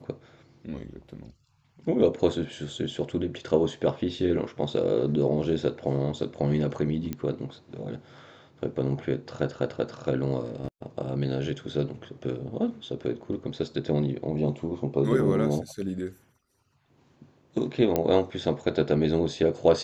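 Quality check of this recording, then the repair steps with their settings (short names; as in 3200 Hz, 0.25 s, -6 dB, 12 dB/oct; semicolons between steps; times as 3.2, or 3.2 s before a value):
7.13 pop -18 dBFS
17.96 pop -11 dBFS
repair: de-click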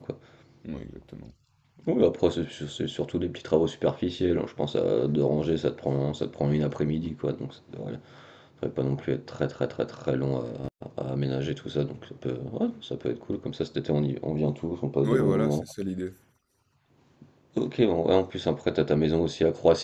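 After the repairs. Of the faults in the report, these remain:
none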